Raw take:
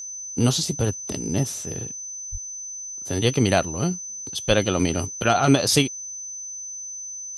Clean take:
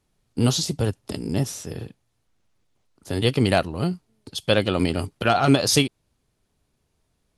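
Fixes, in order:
notch filter 6,100 Hz, Q 30
high-pass at the plosives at 0:02.31/0:04.47

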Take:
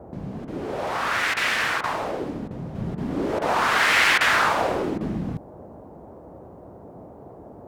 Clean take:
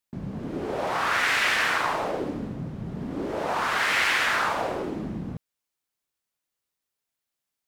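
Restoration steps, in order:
repair the gap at 0:00.45/0:01.34/0:01.81/0:02.48/0:02.95/0:03.39/0:04.18/0:04.98, 26 ms
noise reduction from a noise print 30 dB
level 0 dB, from 0:02.75 −5 dB

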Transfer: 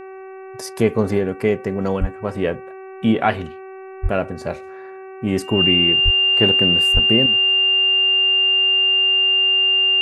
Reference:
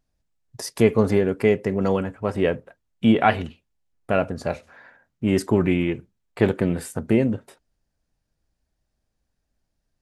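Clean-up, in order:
hum removal 381.2 Hz, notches 7
notch filter 2,800 Hz, Q 30
high-pass at the plosives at 0:02.00/0:04.02/0:06.04/0:06.93
level correction +11.5 dB, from 0:07.26

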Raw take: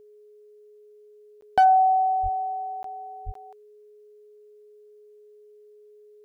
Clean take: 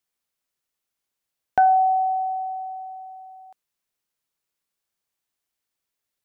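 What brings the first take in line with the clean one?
clipped peaks rebuilt −12 dBFS
notch filter 420 Hz, Q 30
high-pass at the plosives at 0:02.22/0:03.25
repair the gap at 0:01.41/0:02.83/0:03.34, 13 ms

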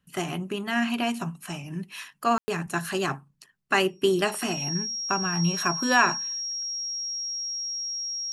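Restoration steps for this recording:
notch filter 5,600 Hz, Q 30
ambience match 0:02.38–0:02.48

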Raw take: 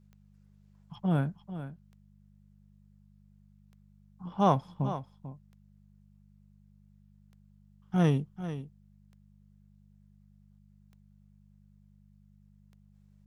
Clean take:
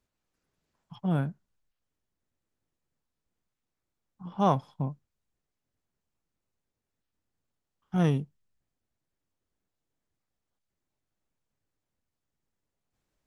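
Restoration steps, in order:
click removal
hum removal 50 Hz, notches 4
echo removal 443 ms −12 dB

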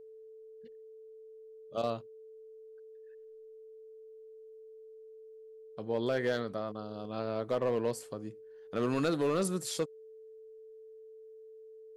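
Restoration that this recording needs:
clipped peaks rebuilt −23 dBFS
notch filter 440 Hz, Q 30

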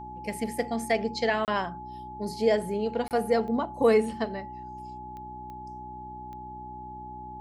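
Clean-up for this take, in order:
click removal
hum removal 62.3 Hz, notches 6
notch filter 850 Hz, Q 30
repair the gap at 0:01.45/0:03.08, 28 ms

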